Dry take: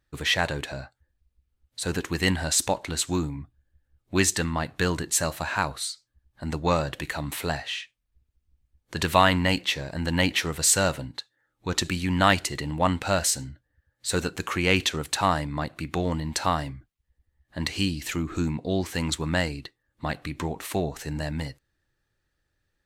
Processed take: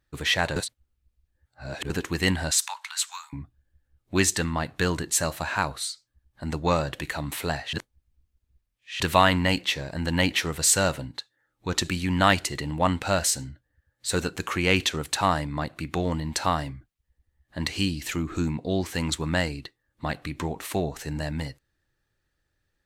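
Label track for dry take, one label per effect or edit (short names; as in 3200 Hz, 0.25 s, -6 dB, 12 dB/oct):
0.560000	1.900000	reverse
2.510000	3.330000	steep high-pass 930 Hz 48 dB/oct
7.730000	9.000000	reverse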